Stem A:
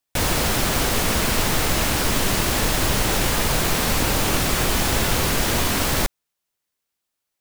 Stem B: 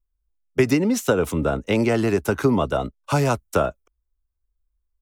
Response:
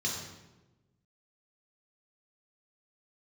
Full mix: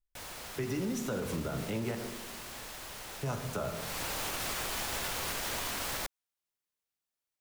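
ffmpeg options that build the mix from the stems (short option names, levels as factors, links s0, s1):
-filter_complex "[0:a]acrossover=split=490|3000[s0][s1][s2];[s0]acompressor=threshold=0.0126:ratio=2[s3];[s3][s1][s2]amix=inputs=3:normalize=0,volume=0.299,afade=t=in:st=3.75:d=0.44:silence=0.281838[s4];[1:a]flanger=delay=4.7:depth=9.8:regen=73:speed=1.4:shape=sinusoidal,volume=0.501,asplit=3[s5][s6][s7];[s5]atrim=end=1.95,asetpts=PTS-STARTPTS,afade=t=out:st=1.946:d=0.004:c=hsin[s8];[s6]atrim=start=1.95:end=3.23,asetpts=PTS-STARTPTS,volume=0[s9];[s7]atrim=start=3.23,asetpts=PTS-STARTPTS,afade=t=in:d=0.004:c=hsin[s10];[s8][s9][s10]concat=n=3:v=0:a=1,asplit=2[s11][s12];[s12]volume=0.237[s13];[2:a]atrim=start_sample=2205[s14];[s13][s14]afir=irnorm=-1:irlink=0[s15];[s4][s11][s15]amix=inputs=3:normalize=0,alimiter=level_in=1.19:limit=0.0631:level=0:latency=1:release=106,volume=0.841"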